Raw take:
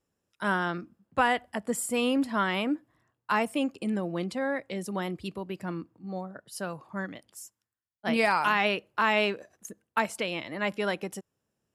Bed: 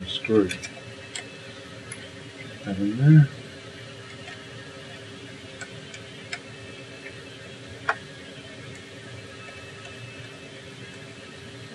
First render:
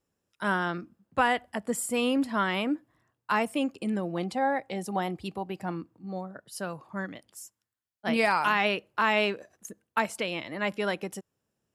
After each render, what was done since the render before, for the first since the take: 4.17–5.76 bell 790 Hz +14 dB 0.25 oct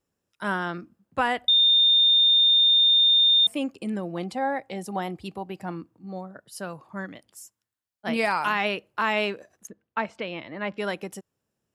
1.48–3.47 bleep 3630 Hz -15 dBFS; 9.67–10.78 air absorption 200 m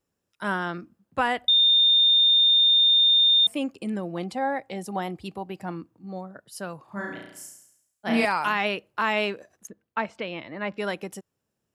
6.84–8.25 flutter echo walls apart 5.9 m, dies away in 0.77 s; 10.44–10.87 notch 3200 Hz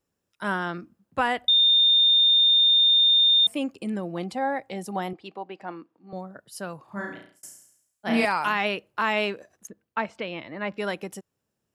5.13–6.13 BPF 340–3800 Hz; 7.03–7.43 fade out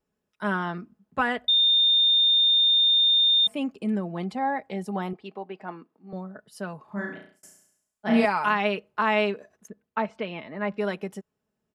high shelf 3800 Hz -10.5 dB; comb 4.7 ms, depth 50%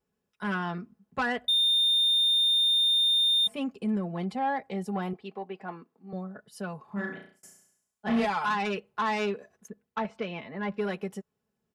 soft clip -20.5 dBFS, distortion -14 dB; notch comb 310 Hz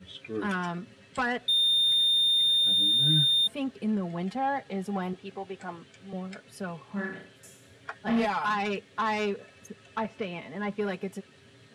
add bed -14.5 dB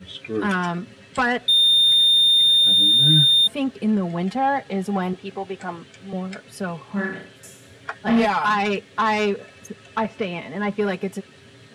gain +8 dB

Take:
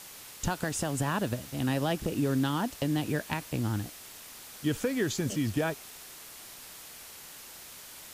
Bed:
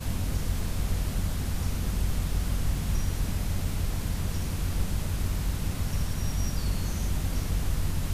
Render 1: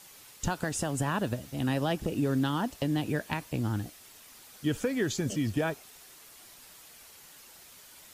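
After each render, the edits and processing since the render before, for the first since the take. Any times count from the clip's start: denoiser 7 dB, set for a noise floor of -48 dBFS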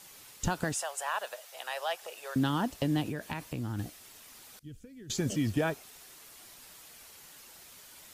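0.74–2.36 inverse Chebyshev high-pass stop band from 300 Hz; 3.02–3.79 compressor, threshold -31 dBFS; 4.59–5.1 passive tone stack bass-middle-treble 10-0-1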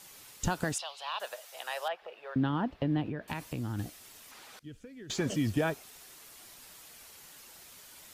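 0.78–1.2 EQ curve 120 Hz 0 dB, 220 Hz -12 dB, 610 Hz -8 dB, 1100 Hz -2 dB, 1700 Hz -12 dB, 2400 Hz +1 dB, 4100 Hz +10 dB, 7500 Hz -21 dB; 1.88–3.28 air absorption 380 m; 4.31–5.34 overdrive pedal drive 14 dB, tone 1900 Hz, clips at -18 dBFS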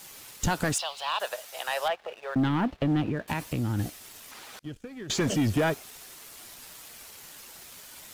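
sample leveller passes 2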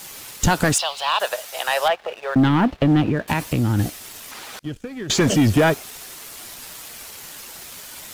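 gain +9 dB

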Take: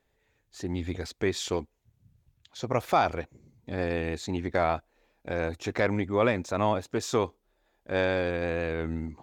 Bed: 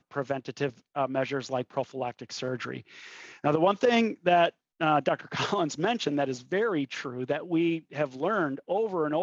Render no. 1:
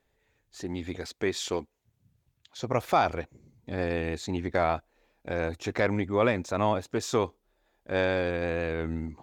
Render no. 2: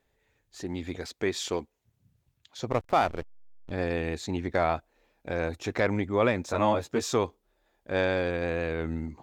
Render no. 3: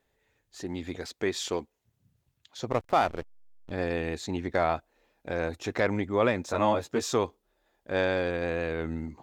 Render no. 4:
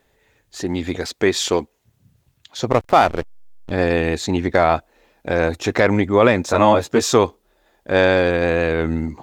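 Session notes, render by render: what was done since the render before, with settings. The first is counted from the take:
0.63–2.59 low shelf 120 Hz -9.5 dB
2.71–3.71 backlash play -28.5 dBFS; 6.46–7.13 doubler 13 ms -3 dB
low shelf 120 Hz -4 dB; notch 2300 Hz, Q 30
gain +12 dB; limiter -2 dBFS, peak gain reduction 2.5 dB

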